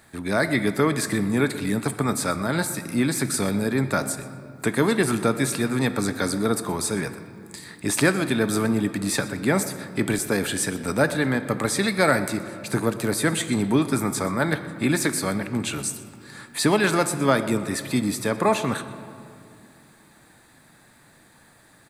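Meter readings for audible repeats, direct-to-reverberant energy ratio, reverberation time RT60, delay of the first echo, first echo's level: 1, 10.0 dB, 2.5 s, 0.123 s, -18.0 dB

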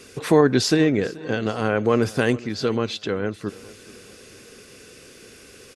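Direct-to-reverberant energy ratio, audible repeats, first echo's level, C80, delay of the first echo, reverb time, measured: none, 3, -21.0 dB, none, 0.431 s, none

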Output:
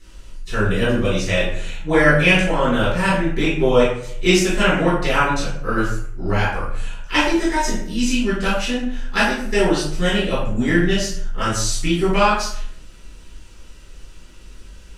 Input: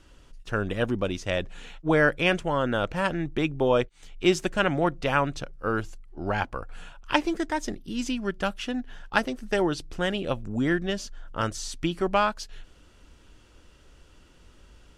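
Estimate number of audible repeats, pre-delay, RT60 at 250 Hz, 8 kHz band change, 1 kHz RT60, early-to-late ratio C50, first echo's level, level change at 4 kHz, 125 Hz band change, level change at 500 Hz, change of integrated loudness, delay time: none, 3 ms, 0.80 s, +13.0 dB, 0.60 s, 1.5 dB, none, +9.5 dB, +9.5 dB, +7.0 dB, +8.0 dB, none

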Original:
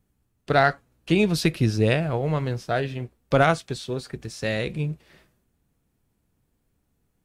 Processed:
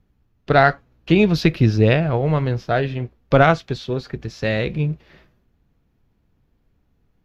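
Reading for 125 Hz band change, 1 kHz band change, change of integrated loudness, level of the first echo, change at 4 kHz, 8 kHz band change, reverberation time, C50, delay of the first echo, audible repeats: +6.0 dB, +5.0 dB, +5.0 dB, none, +2.0 dB, n/a, none, none, none, none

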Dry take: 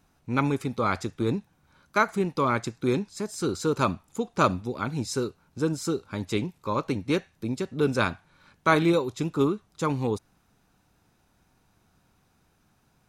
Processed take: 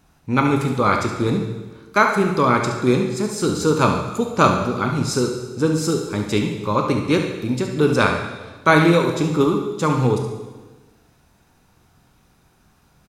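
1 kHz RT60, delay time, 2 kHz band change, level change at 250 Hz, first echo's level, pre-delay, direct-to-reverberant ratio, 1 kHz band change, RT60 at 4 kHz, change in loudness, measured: 1.2 s, 70 ms, +8.5 dB, +8.0 dB, -9.0 dB, 15 ms, 2.5 dB, +8.0 dB, 1.2 s, +8.0 dB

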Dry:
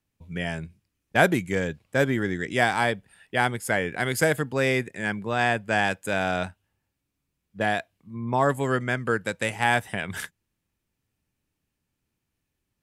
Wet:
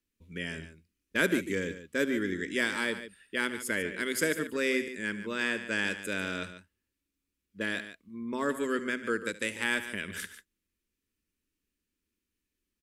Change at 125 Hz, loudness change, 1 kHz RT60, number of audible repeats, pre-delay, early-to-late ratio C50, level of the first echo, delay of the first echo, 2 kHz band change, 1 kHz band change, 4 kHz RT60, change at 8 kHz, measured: -15.0 dB, -6.5 dB, none, 2, none, none, -17.0 dB, 73 ms, -5.0 dB, -14.5 dB, none, -2.5 dB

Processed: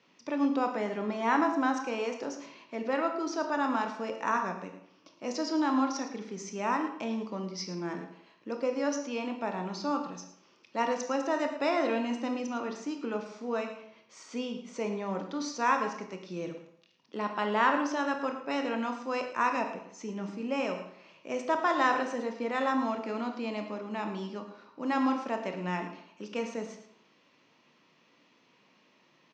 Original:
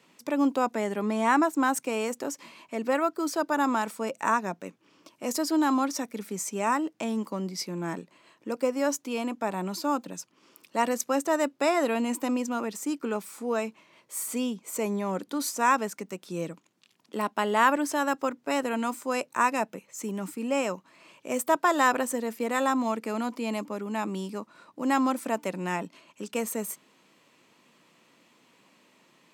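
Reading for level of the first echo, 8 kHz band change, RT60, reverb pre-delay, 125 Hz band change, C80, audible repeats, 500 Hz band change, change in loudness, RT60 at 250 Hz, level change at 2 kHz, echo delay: -13.0 dB, -10.5 dB, 0.70 s, 22 ms, -3.5 dB, 9.0 dB, 1, -3.5 dB, -3.5 dB, 0.70 s, -3.0 dB, 0.11 s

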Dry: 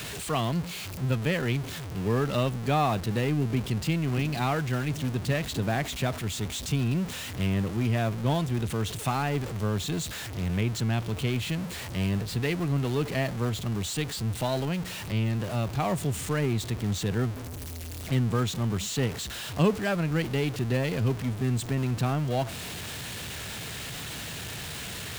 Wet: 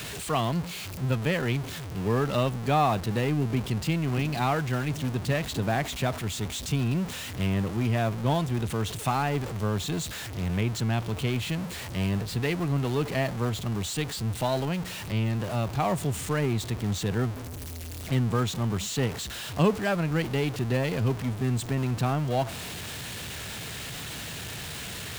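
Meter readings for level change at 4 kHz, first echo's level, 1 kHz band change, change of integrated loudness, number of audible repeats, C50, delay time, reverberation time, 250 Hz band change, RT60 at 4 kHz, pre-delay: 0.0 dB, none, +2.5 dB, +0.5 dB, none, none, none, none, 0.0 dB, none, none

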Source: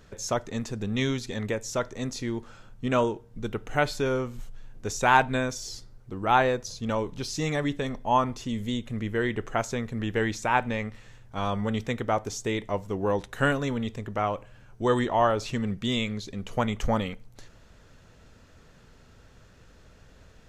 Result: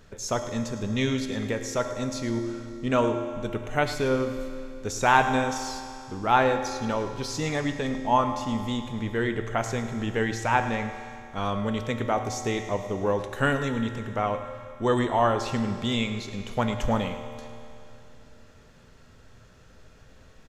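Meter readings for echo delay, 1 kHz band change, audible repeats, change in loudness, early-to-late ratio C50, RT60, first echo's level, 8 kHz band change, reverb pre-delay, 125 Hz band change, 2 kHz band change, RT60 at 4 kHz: 0.106 s, +1.0 dB, 1, +1.0 dB, 7.5 dB, 2.7 s, -14.0 dB, +1.0 dB, 4 ms, +0.5 dB, +0.5 dB, 2.6 s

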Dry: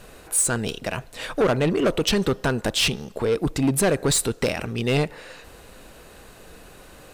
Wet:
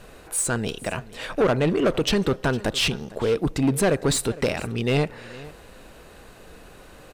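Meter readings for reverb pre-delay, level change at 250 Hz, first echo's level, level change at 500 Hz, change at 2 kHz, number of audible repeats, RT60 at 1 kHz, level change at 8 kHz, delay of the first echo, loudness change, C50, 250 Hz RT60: none, 0.0 dB, -19.5 dB, 0.0 dB, -0.5 dB, 1, none, -4.0 dB, 0.457 s, -1.0 dB, none, none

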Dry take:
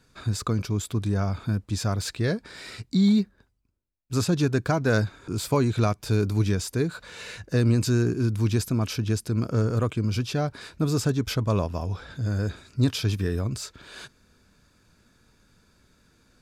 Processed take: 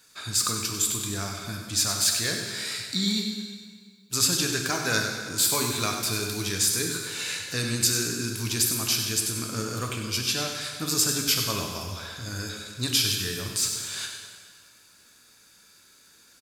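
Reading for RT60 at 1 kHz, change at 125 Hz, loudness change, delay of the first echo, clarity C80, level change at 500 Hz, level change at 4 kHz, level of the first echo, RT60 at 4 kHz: 1.8 s, -10.0 dB, +0.5 dB, 97 ms, 4.0 dB, -6.5 dB, +10.5 dB, -9.5 dB, 1.6 s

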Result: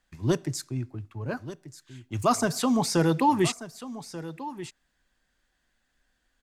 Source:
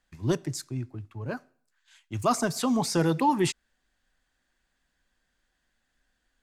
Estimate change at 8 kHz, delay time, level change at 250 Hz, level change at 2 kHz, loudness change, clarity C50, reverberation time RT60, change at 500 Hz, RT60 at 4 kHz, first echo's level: +1.5 dB, 1.186 s, +1.5 dB, +1.5 dB, +0.5 dB, none, none, +1.5 dB, none, -14.5 dB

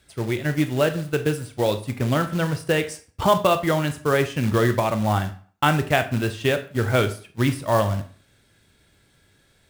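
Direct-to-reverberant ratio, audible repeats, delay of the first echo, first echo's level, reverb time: 8.5 dB, none, none, none, 0.45 s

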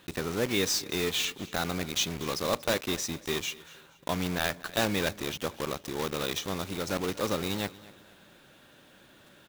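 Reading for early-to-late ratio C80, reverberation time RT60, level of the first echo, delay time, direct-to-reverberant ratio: none, none, -20.0 dB, 0.237 s, none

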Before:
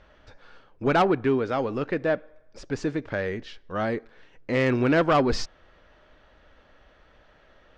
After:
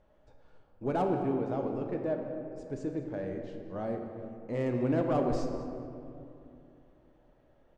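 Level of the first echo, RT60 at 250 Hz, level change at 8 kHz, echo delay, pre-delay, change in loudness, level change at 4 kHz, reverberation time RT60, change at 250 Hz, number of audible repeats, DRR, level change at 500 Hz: -18.0 dB, 3.4 s, n/a, 0.209 s, 3 ms, -8.0 dB, -18.5 dB, 2.7 s, -6.0 dB, 1, 3.0 dB, -7.0 dB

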